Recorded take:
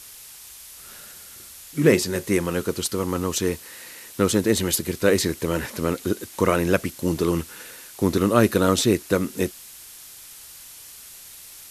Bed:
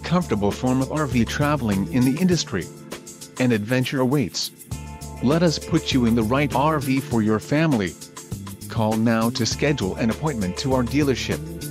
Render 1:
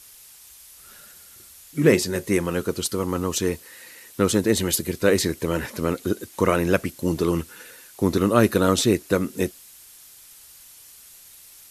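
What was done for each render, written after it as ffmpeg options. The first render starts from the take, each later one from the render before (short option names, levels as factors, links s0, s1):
-af "afftdn=nr=6:nf=-43"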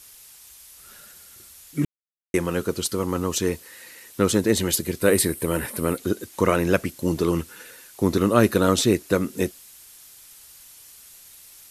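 -filter_complex "[0:a]asettb=1/sr,asplit=3[s0][s1][s2];[s0]atrim=end=5.014[s3];[s1]atrim=start=5.01:end=5.98,asetpts=PTS-STARTPTS,afade=t=in:d=0.004:c=qsin,afade=t=out:st=0.966:d=0.004:c=qsin,highshelf=f=7700:t=q:w=3:g=6[s4];[s2]atrim=start=5.976[s5];[s3][s4]acrossfade=d=0.004:c1=hsin:c2=qsin[s6];[s6][s5]acrossfade=d=0.004:c1=qsin:c2=hsin,asplit=3[s7][s8][s9];[s7]atrim=end=1.85,asetpts=PTS-STARTPTS,afade=t=out:st=1.846:d=0.004:c=hsin[s10];[s8]atrim=start=1.85:end=2.34,asetpts=PTS-STARTPTS,volume=0[s11];[s9]atrim=start=2.34,asetpts=PTS-STARTPTS,afade=t=in:d=0.004:c=hsin[s12];[s10][s11][s12]concat=n=3:v=0:a=1"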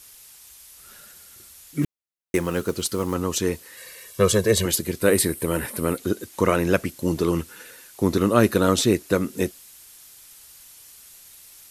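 -filter_complex "[0:a]asettb=1/sr,asplit=3[s0][s1][s2];[s0]atrim=end=1.824[s3];[s1]atrim=start=1.82:end=3.15,asetpts=PTS-STARTPTS,afade=t=in:d=0.004:c=qsin,afade=t=out:st=1.326:d=0.004:c=qsin,acrusher=bits=6:mode=log:mix=0:aa=0.000001[s4];[s2]atrim=start=3.146[s5];[s3][s4]acrossfade=d=0.004:c1=hsin:c2=qsin[s6];[s6][s5]acrossfade=d=0.004:c1=qsin:c2=hsin,asettb=1/sr,asplit=3[s7][s8][s9];[s7]atrim=end=3.774[s10];[s8]atrim=start=3.77:end=4.66,asetpts=PTS-STARTPTS,afade=t=in:d=0.004:c=qsin,afade=t=out:st=0.886:d=0.004:c=qsin,aecho=1:1:1.8:0.92,atrim=end_sample=39249[s11];[s9]atrim=start=4.656[s12];[s10][s11]acrossfade=d=0.004:c1=hsin:c2=qsin[s13];[s13][s12]acrossfade=d=0.004:c1=qsin:c2=hsin"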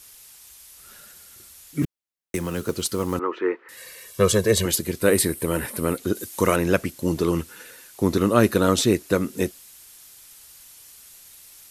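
-filter_complex "[0:a]asettb=1/sr,asplit=3[s0][s1][s2];[s0]atrim=end=1.824[s3];[s1]atrim=start=1.82:end=2.69,asetpts=PTS-STARTPTS,afade=t=in:d=0.004:c=qsin,afade=t=out:st=0.866:d=0.004:c=qsin,acrossover=split=240|3000[s4][s5][s6];[s5]acompressor=threshold=0.0447:ratio=6:attack=3.2:release=140:knee=2.83:detection=peak[s7];[s4][s7][s6]amix=inputs=3:normalize=0[s8];[s2]atrim=start=2.686[s9];[s3][s8]acrossfade=d=0.004:c1=hsin:c2=qsin[s10];[s10][s9]acrossfade=d=0.004:c1=qsin:c2=hsin,asettb=1/sr,asplit=3[s11][s12][s13];[s11]atrim=end=3.194[s14];[s12]atrim=start=3.19:end=3.69,asetpts=PTS-STARTPTS,afade=t=in:d=0.004:c=qsin,afade=t=out:st=0.496:d=0.004:c=qsin,highpass=f=330:w=0.5412,highpass=f=330:w=1.3066,equalizer=f=350:t=q:w=4:g=6,equalizer=f=630:t=q:w=4:g=-6,equalizer=f=910:t=q:w=4:g=3,equalizer=f=1300:t=q:w=4:g=9,equalizer=f=2000:t=q:w=4:g=4,lowpass=f=2200:w=0.5412,lowpass=f=2200:w=1.3066[s15];[s13]atrim=start=3.686[s16];[s14][s15]acrossfade=d=0.004:c1=hsin:c2=qsin[s17];[s17][s16]acrossfade=d=0.004:c1=qsin:c2=hsin,asettb=1/sr,asplit=3[s18][s19][s20];[s18]atrim=end=6.154[s21];[s19]atrim=start=6.15:end=6.56,asetpts=PTS-STARTPTS,afade=t=in:d=0.004:c=qsin,afade=t=out:st=0.406:d=0.004:c=qsin,aemphasis=mode=production:type=cd[s22];[s20]atrim=start=6.556[s23];[s21][s22]acrossfade=d=0.004:c1=hsin:c2=qsin[s24];[s24][s23]acrossfade=d=0.004:c1=qsin:c2=hsin"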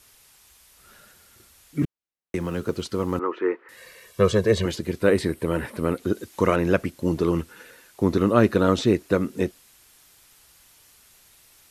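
-filter_complex "[0:a]acrossover=split=6500[s0][s1];[s1]acompressor=threshold=0.00708:ratio=4:attack=1:release=60[s2];[s0][s2]amix=inputs=2:normalize=0,highshelf=f=3500:g=-9"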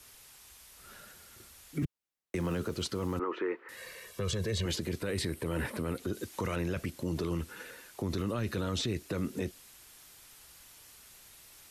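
-filter_complex "[0:a]acrossover=split=140|2200[s0][s1][s2];[s1]acompressor=threshold=0.0501:ratio=6[s3];[s0][s3][s2]amix=inputs=3:normalize=0,alimiter=level_in=1.06:limit=0.0631:level=0:latency=1:release=17,volume=0.944"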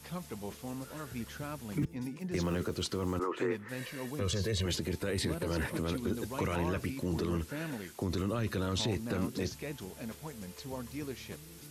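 -filter_complex "[1:a]volume=0.0944[s0];[0:a][s0]amix=inputs=2:normalize=0"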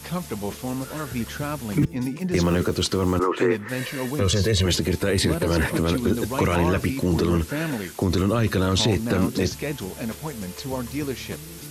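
-af "volume=3.98"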